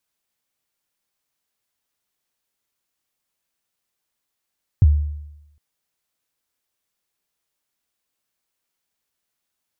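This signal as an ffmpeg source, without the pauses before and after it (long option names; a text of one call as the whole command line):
ffmpeg -f lavfi -i "aevalsrc='0.473*pow(10,-3*t/0.91)*sin(2*PI*(120*0.033/log(74/120)*(exp(log(74/120)*min(t,0.033)/0.033)-1)+74*max(t-0.033,0)))':duration=0.76:sample_rate=44100" out.wav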